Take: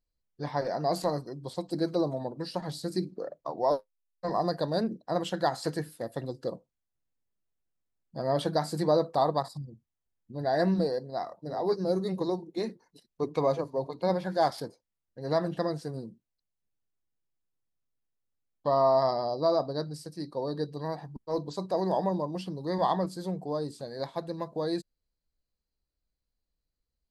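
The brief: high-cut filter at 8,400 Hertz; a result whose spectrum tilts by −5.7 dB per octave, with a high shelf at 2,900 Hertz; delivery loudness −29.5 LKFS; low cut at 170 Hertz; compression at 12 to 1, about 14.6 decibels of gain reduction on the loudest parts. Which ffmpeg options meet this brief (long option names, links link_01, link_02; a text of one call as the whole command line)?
ffmpeg -i in.wav -af "highpass=170,lowpass=8400,highshelf=frequency=2900:gain=-4,acompressor=threshold=-35dB:ratio=12,volume=11.5dB" out.wav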